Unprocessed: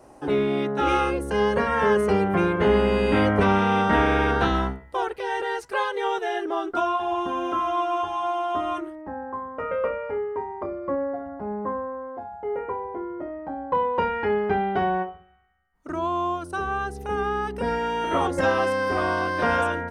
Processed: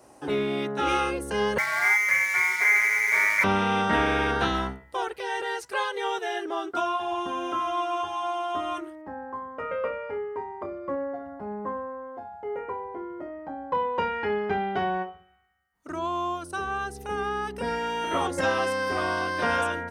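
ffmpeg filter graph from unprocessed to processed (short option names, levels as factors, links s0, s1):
-filter_complex "[0:a]asettb=1/sr,asplit=3[s0][s1][s2];[s0]atrim=end=1.584[s3];[s1]atrim=start=1.58:end=3.44,asetpts=PTS-STARTPTS,afade=t=in:d=0.004:c=qsin,afade=t=out:st=1.856:d=0.004:c=qsin,highpass=140,lowpass=f=2100:t=q:w=0.5098,lowpass=f=2100:t=q:w=0.6013,lowpass=f=2100:t=q:w=0.9,lowpass=f=2100:t=q:w=2.563,afreqshift=-2500,aeval=exprs='sgn(val(0))*max(abs(val(0))-0.0158,0)':c=same[s4];[s2]atrim=start=3.436[s5];[s3][s4]acrossfade=d=0.004:c1=hsin:c2=qsin[s6];[s6][s5]acrossfade=d=0.004:c1=qsin:c2=hsin,highpass=64,highshelf=f=2200:g=8.5,volume=0.596"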